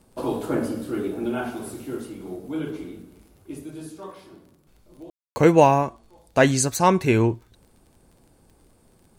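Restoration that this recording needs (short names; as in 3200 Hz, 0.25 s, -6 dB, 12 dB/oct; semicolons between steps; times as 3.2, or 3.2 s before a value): de-click; room tone fill 5.1–5.36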